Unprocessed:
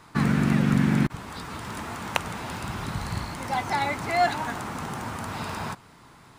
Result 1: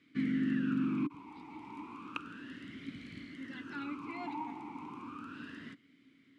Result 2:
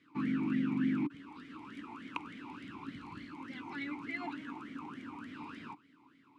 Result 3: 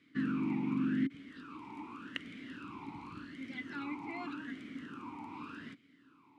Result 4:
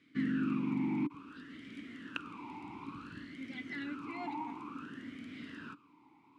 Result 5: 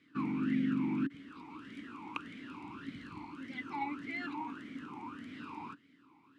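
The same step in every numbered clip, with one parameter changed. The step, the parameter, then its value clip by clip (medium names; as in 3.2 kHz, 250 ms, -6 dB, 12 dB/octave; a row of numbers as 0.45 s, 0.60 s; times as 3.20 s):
talking filter, rate: 0.33 Hz, 3.4 Hz, 0.86 Hz, 0.57 Hz, 1.7 Hz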